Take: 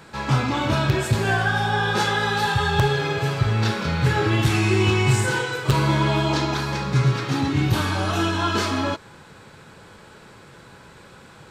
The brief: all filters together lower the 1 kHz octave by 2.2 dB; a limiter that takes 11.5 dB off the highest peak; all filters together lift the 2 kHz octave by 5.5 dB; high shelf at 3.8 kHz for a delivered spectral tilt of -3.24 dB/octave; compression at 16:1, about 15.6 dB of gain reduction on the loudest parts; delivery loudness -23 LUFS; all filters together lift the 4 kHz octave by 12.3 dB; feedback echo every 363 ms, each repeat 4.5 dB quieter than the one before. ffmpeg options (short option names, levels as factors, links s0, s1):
-af "equalizer=f=1000:t=o:g=-5.5,equalizer=f=2000:t=o:g=5,highshelf=f=3800:g=9,equalizer=f=4000:t=o:g=8.5,acompressor=threshold=0.0398:ratio=16,alimiter=level_in=1.33:limit=0.0631:level=0:latency=1,volume=0.75,aecho=1:1:363|726|1089|1452|1815|2178|2541|2904|3267:0.596|0.357|0.214|0.129|0.0772|0.0463|0.0278|0.0167|0.01,volume=2.99"